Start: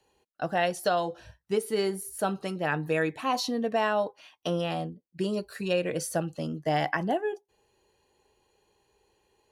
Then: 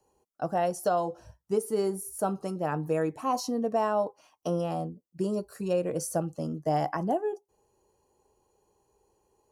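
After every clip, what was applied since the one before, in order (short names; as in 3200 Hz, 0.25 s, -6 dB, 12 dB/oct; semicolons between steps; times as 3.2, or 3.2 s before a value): band shelf 2600 Hz -12.5 dB; notch 3600 Hz, Q 12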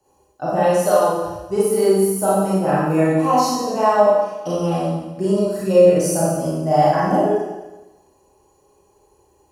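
notch comb 230 Hz; Schroeder reverb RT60 1.1 s, combs from 28 ms, DRR -8 dB; gain +5 dB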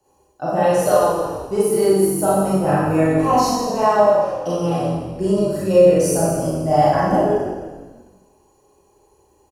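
frequency-shifting echo 0.161 s, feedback 49%, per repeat -46 Hz, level -12 dB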